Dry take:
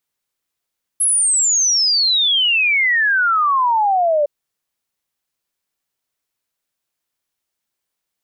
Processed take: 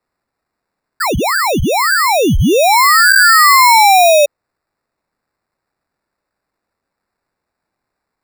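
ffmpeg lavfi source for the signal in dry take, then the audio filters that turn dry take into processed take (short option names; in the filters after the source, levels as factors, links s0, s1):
-f lavfi -i "aevalsrc='0.237*clip(min(t,3.26-t)/0.01,0,1)*sin(2*PI*11000*3.26/log(570/11000)*(exp(log(570/11000)*t/3.26)-1))':d=3.26:s=44100"
-af "equalizer=f=1000:w=0.3:g=8.5,acrusher=samples=14:mix=1:aa=0.000001"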